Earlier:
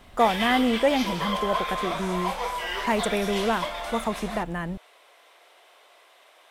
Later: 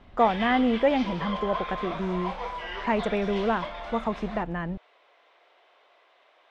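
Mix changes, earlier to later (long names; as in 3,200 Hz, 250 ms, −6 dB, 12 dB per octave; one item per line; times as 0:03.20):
background −3.5 dB
master: add high-frequency loss of the air 200 metres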